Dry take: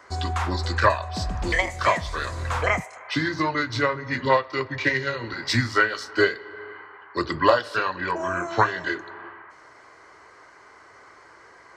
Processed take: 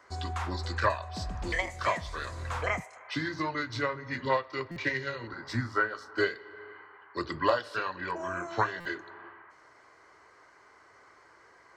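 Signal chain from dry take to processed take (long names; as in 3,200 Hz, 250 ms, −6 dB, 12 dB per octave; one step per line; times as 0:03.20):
0:05.27–0:06.18: high shelf with overshoot 1,800 Hz −8 dB, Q 1.5
buffer that repeats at 0:04.71/0:08.80, samples 256, times 8
level −8 dB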